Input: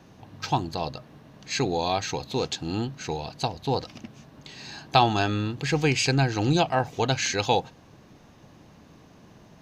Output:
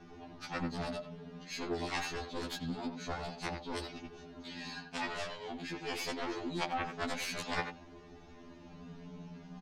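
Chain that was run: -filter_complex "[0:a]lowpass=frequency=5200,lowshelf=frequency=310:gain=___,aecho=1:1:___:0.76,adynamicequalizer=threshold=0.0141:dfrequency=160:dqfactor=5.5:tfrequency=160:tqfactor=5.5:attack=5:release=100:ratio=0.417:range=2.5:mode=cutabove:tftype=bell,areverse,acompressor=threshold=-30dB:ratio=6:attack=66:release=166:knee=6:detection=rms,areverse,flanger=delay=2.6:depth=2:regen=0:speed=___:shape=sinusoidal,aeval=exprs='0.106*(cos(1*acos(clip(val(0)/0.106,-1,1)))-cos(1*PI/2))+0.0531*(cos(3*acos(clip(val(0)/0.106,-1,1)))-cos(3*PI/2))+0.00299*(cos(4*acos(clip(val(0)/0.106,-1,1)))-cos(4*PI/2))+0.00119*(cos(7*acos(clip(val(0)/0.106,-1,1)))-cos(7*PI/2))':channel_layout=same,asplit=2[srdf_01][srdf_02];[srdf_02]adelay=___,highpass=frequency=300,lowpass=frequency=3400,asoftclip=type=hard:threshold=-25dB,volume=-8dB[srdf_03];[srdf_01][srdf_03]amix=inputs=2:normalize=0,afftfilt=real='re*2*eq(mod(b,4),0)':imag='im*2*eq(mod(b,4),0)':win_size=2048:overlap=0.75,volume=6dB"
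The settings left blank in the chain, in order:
6.5, 4.9, 0.49, 90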